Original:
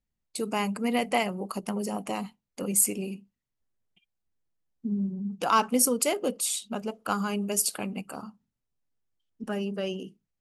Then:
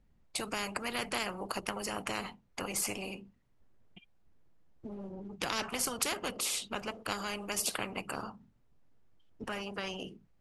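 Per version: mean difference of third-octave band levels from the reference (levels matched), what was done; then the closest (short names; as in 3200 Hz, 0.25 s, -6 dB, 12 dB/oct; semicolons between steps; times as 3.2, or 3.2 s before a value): 9.5 dB: LPF 1100 Hz 6 dB/oct; spectral compressor 4:1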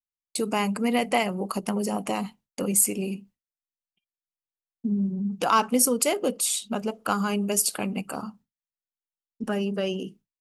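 1.0 dB: expander -52 dBFS; in parallel at +0.5 dB: compressor, threshold -33 dBFS, peak gain reduction 15.5 dB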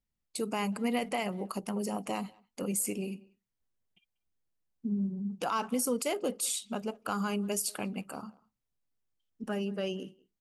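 2.0 dB: limiter -19 dBFS, peak gain reduction 10.5 dB; speakerphone echo 0.19 s, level -23 dB; gain -2.5 dB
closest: second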